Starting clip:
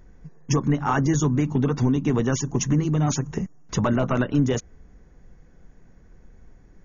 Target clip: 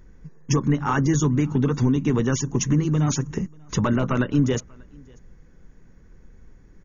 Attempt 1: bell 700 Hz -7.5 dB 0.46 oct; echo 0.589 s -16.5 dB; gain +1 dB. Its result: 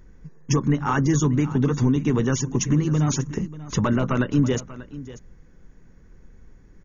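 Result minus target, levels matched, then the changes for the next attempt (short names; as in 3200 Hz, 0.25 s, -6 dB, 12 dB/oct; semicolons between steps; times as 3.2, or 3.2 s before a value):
echo-to-direct +11.5 dB
change: echo 0.589 s -28 dB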